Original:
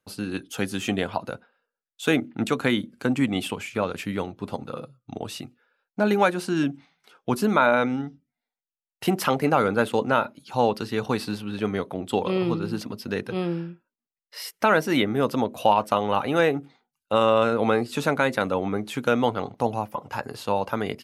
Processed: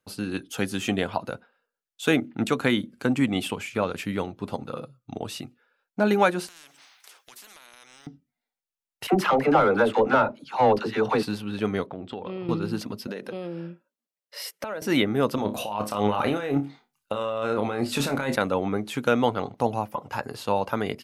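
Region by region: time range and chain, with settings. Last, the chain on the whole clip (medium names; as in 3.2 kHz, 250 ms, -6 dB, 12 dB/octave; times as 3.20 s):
6.47–8.07 s: high-pass 1.4 kHz + compression 3:1, threshold -44 dBFS + spectrum-flattening compressor 4:1
9.07–11.23 s: overdrive pedal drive 16 dB, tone 1 kHz, clips at -6.5 dBFS + phase dispersion lows, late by 60 ms, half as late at 540 Hz
11.86–12.49 s: compression 4:1, threshold -31 dBFS + distance through air 190 m
13.07–14.82 s: high-pass 160 Hz 24 dB/octave + peaking EQ 560 Hz +10 dB 0.32 oct + compression 10:1, threshold -29 dBFS
15.35–18.36 s: compressor with a negative ratio -27 dBFS + flutter echo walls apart 4.9 m, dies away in 0.2 s
whole clip: none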